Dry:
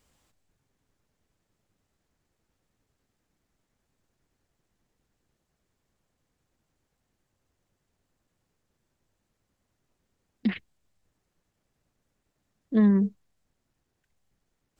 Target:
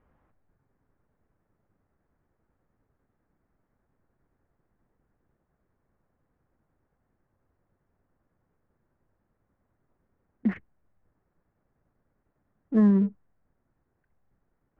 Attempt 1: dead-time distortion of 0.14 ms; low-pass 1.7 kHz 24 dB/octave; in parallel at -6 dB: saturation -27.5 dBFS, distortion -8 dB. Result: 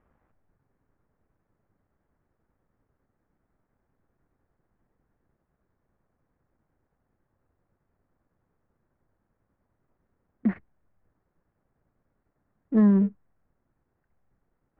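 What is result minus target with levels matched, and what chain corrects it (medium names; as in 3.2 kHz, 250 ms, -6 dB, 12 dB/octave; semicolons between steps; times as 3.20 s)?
dead-time distortion: distortion +22 dB; saturation: distortion -4 dB
dead-time distortion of 0.033 ms; low-pass 1.7 kHz 24 dB/octave; in parallel at -6 dB: saturation -39.5 dBFS, distortion -4 dB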